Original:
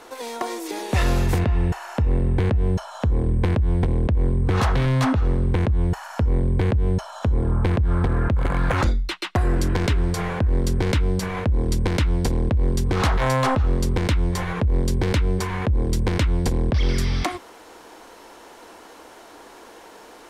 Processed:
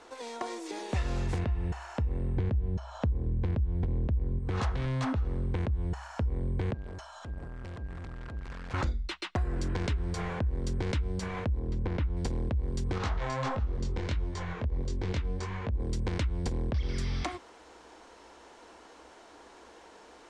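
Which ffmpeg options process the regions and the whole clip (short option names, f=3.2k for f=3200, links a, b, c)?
-filter_complex "[0:a]asettb=1/sr,asplit=3[a][b][c];[a]atrim=end=2.374[d];[b]atrim=start=2.37:end=4.39,asetpts=PTS-STARTPTS,afade=t=in:d=0.004:c=qsin,afade=t=out:st=2.016:d=0.004:c=qsin,lowpass=6.8k,lowshelf=f=420:g=7.5[e];[c]atrim=start=4.386[f];[d][e]acrossfade=d=0.004:c1=hsin:c2=qsin[g];[g][f]acrossfade=d=0.004:c1=qsin:c2=hsin,asettb=1/sr,asplit=3[h][i][j];[h]atrim=end=6.744[k];[i]atrim=start=6.74:end=8.74,asetpts=PTS-STARTPTS,afade=t=in:d=0.004:c=qsin,afade=t=out:st=1.996:d=0.004:c=qsin,equalizer=f=380:w=0.44:g=-4.5,volume=32dB,asoftclip=hard,volume=-32dB,aeval=exprs='val(0)+0.00355*sin(2*PI*1600*n/s)':c=same[l];[j]atrim=start=8.736[m];[k][l]acrossfade=d=0.004:c1=hsin:c2=qsin[n];[n][m]acrossfade=d=0.004:c1=qsin:c2=hsin,asettb=1/sr,asplit=3[o][p][q];[o]atrim=end=11.594[r];[p]atrim=start=11.59:end=12.17,asetpts=PTS-STARTPTS,afade=t=in:d=0.004:c=qsin,afade=t=out:st=0.576:d=0.004:c=qsin,lowpass=8.8k,acrossover=split=3700[s][t];[t]acompressor=threshold=-42dB:ratio=4:attack=1:release=60[u];[s][u]amix=inputs=2:normalize=0,highshelf=f=2.1k:g=-8.5[v];[q]atrim=start=12.166[w];[r][v]acrossfade=d=0.004:c1=hsin:c2=qsin[x];[x][w]acrossfade=d=0.004:c1=qsin:c2=hsin,asettb=1/sr,asplit=3[y][z][aa];[y]atrim=end=12.984[ab];[z]atrim=start=12.98:end=15.8,asetpts=PTS-STARTPTS,afade=t=in:d=0.004:c=qsin,afade=t=out:st=2.816:d=0.004:c=qsin,lowpass=f=7.9k:w=0.5412,lowpass=f=7.9k:w=1.3066,flanger=delay=19.5:depth=6.3:speed=1.5[ac];[aa]atrim=start=15.796[ad];[ab][ac]acrossfade=d=0.004:c1=hsin:c2=qsin[ae];[ae][ad]acrossfade=d=0.004:c1=qsin:c2=hsin,lowpass=f=8.5k:w=0.5412,lowpass=f=8.5k:w=1.3066,equalizer=f=64:w=6.5:g=13.5,acompressor=threshold=-18dB:ratio=6,volume=-8.5dB"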